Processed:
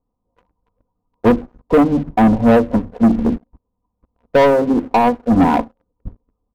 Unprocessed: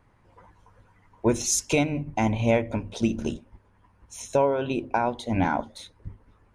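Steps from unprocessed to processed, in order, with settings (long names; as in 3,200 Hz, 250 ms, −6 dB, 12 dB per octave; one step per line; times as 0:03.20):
adaptive Wiener filter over 25 samples
Chebyshev low-pass filter 1,200 Hz, order 4
comb filter 4.1 ms, depth 67%
leveller curve on the samples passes 3
expander for the loud parts 1.5 to 1, over −35 dBFS
level +4.5 dB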